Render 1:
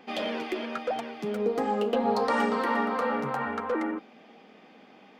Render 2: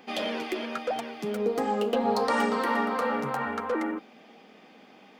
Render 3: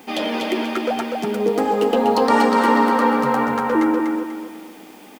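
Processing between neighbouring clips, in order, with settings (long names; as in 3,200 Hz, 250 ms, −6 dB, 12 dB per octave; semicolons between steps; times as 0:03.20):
high-shelf EQ 5,600 Hz +8.5 dB
hollow resonant body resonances 310/900 Hz, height 8 dB, ringing for 45 ms; bit-depth reduction 10 bits, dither triangular; repeating echo 245 ms, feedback 37%, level −4 dB; level +6 dB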